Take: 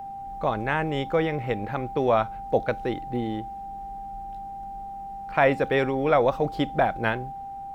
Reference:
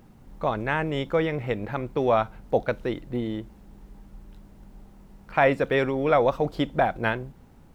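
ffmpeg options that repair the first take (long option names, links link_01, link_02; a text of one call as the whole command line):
ffmpeg -i in.wav -af "bandreject=frequency=790:width=30" out.wav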